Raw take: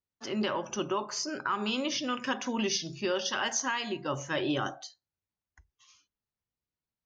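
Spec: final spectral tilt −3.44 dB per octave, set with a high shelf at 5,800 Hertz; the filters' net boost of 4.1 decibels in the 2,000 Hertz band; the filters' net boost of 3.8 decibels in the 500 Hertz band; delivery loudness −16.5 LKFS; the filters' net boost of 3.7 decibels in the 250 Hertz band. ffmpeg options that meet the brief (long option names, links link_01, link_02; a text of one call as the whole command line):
ffmpeg -i in.wav -af "equalizer=frequency=250:width_type=o:gain=3.5,equalizer=frequency=500:width_type=o:gain=3.5,equalizer=frequency=2000:width_type=o:gain=6,highshelf=frequency=5800:gain=-5.5,volume=12.5dB" out.wav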